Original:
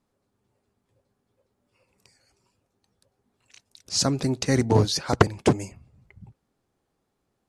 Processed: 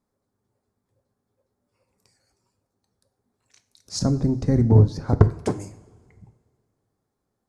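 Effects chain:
0:03.99–0:05.30: spectral tilt −4.5 dB per octave
in parallel at +1 dB: downward compressor, threshold −18 dBFS, peak gain reduction 17 dB
on the sum: parametric band 2,800 Hz −10 dB 0.7 octaves
coupled-rooms reverb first 0.49 s, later 2.1 s, from −17 dB, DRR 10 dB
level −9.5 dB

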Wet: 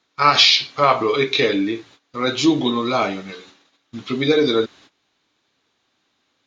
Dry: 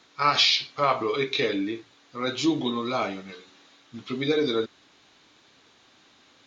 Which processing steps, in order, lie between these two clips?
noise gate −53 dBFS, range −18 dB
level +7.5 dB

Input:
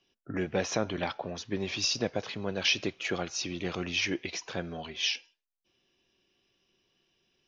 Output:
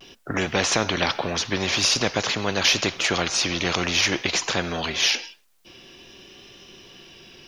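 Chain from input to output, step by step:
pitch vibrato 0.5 Hz 30 cents
every bin compressed towards the loudest bin 2 to 1
level +8 dB

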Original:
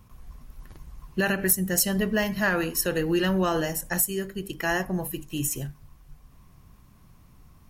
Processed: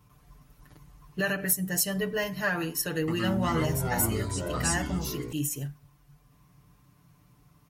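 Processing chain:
high-pass filter 46 Hz 24 dB per octave
comb filter 6.8 ms, depth 98%
0:02.88–0:05.33: delay with pitch and tempo change per echo 196 ms, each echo −6 semitones, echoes 3
level −6.5 dB

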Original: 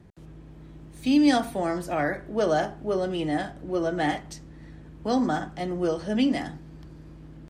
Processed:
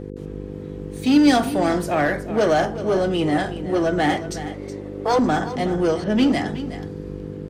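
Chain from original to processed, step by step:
0:04.46–0:05.19: frequency shifter +240 Hz
0:06.04–0:06.48: low-pass that shuts in the quiet parts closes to 2,200 Hz, open at −19 dBFS
in parallel at −9.5 dB: wave folding −25.5 dBFS
on the sum: hum with harmonics 50 Hz, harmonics 10, −39 dBFS 0 dB per octave
on a send: single-tap delay 370 ms −13 dB
on the sum: level +5 dB

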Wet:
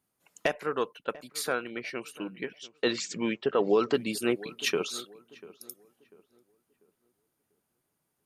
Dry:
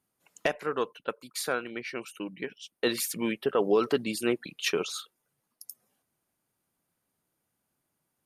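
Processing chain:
0:02.63–0:03.94: linear-phase brick-wall low-pass 8,100 Hz
on a send: feedback echo with a low-pass in the loop 693 ms, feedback 34%, low-pass 1,700 Hz, level −19 dB

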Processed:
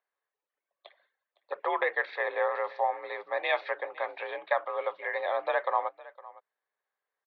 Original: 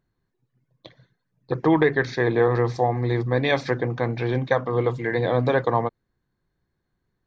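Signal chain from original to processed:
single-tap delay 510 ms −20 dB
single-sideband voice off tune +54 Hz 530–3,500 Hz
level −4 dB

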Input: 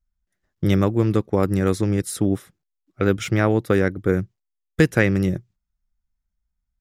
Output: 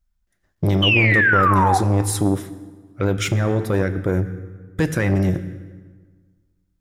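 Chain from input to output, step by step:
brickwall limiter −13 dBFS, peak gain reduction 10 dB
sound drawn into the spectrogram fall, 0:00.82–0:01.78, 740–3,100 Hz −21 dBFS
convolution reverb RT60 1.5 s, pre-delay 5 ms, DRR 10.5 dB
saturating transformer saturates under 440 Hz
level +5.5 dB

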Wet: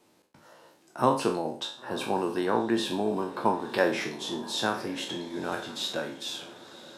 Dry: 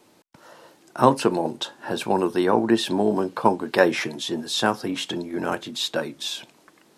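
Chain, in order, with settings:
peak hold with a decay on every bin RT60 0.43 s
feedback delay with all-pass diffusion 1,022 ms, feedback 44%, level −15.5 dB
level −8 dB

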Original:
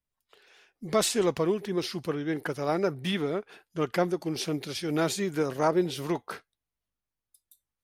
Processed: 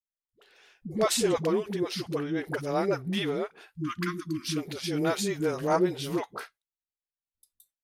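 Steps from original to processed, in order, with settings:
noise gate with hold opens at −51 dBFS
time-frequency box erased 0:03.76–0:04.51, 350–980 Hz
all-pass dispersion highs, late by 85 ms, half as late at 340 Hz

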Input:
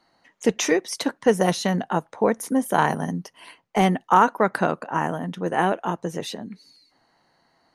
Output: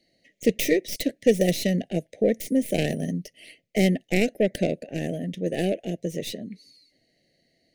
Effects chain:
stylus tracing distortion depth 0.15 ms
elliptic band-stop filter 610–2,000 Hz, stop band 50 dB

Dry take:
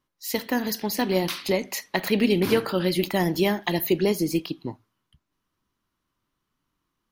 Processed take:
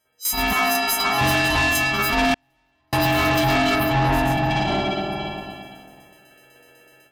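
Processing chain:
every partial snapped to a pitch grid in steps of 4 semitones
shaped tremolo saw down 8 Hz, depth 75%
spring reverb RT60 1.8 s, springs 46/55 ms, chirp 55 ms, DRR −10 dB
automatic gain control gain up to 14.5 dB
in parallel at −2 dB: brickwall limiter −12.5 dBFS, peak gain reduction 12 dB
on the sum: ring modulation 480 Hz
0:00.53–0:01.21: high-pass filter 860 Hz 6 dB per octave
0:03.75–0:04.51: parametric band 13,000 Hz −10 dB 2.9 octaves
soft clipping −14.5 dBFS, distortion −9 dB
0:02.34–0:02.93: noise gate −7 dBFS, range −46 dB

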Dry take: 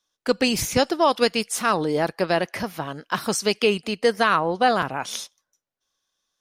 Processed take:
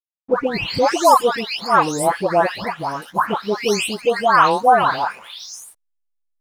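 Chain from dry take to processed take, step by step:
every frequency bin delayed by itself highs late, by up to 484 ms
slack as between gear wheels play −45 dBFS
parametric band 960 Hz +10.5 dB 1.1 octaves
level +1.5 dB

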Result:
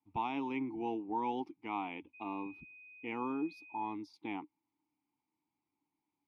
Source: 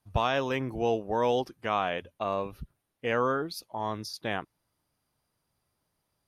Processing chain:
formant filter u
0:02.13–0:03.93: steady tone 2,500 Hz −58 dBFS
level +5 dB

